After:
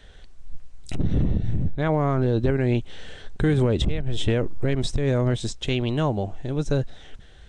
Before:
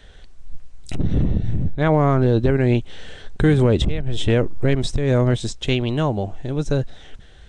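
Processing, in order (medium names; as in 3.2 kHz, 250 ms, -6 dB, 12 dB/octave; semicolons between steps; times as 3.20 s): peak limiter -9.5 dBFS, peak gain reduction 3.5 dB; trim -2.5 dB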